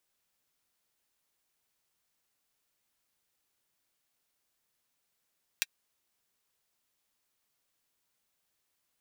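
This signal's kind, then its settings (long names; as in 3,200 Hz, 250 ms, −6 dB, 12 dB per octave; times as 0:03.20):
closed synth hi-hat, high-pass 2,100 Hz, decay 0.04 s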